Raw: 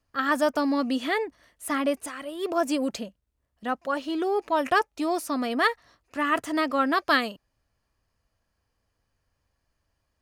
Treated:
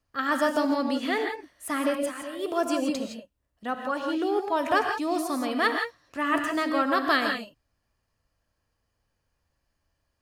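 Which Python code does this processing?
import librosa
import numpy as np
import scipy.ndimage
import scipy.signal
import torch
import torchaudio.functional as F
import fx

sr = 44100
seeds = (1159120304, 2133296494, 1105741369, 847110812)

y = fx.rev_gated(x, sr, seeds[0], gate_ms=190, shape='rising', drr_db=3.5)
y = y * librosa.db_to_amplitude(-2.0)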